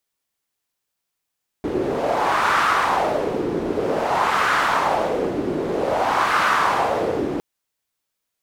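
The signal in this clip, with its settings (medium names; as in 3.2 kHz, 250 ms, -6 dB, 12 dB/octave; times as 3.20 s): wind-like swept noise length 5.76 s, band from 340 Hz, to 1.3 kHz, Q 2.7, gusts 3, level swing 5.5 dB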